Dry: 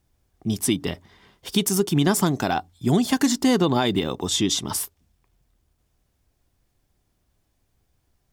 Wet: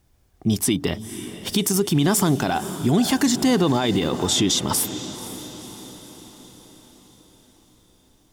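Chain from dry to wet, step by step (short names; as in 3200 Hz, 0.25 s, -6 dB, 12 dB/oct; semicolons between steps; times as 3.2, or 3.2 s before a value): diffused feedback echo 0.512 s, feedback 55%, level -16 dB; limiter -16.5 dBFS, peak gain reduction 8.5 dB; gain +6 dB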